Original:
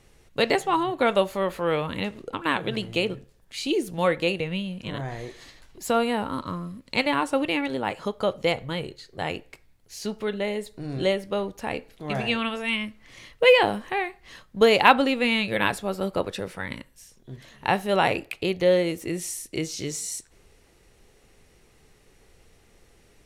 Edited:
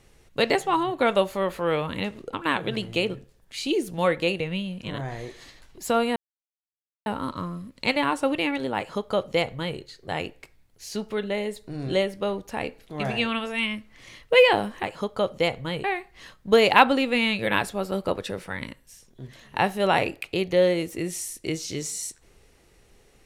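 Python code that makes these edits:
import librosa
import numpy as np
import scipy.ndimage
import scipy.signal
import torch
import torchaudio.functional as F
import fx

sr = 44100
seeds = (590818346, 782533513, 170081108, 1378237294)

y = fx.edit(x, sr, fx.insert_silence(at_s=6.16, length_s=0.9),
    fx.duplicate(start_s=7.87, length_s=1.01, to_s=13.93), tone=tone)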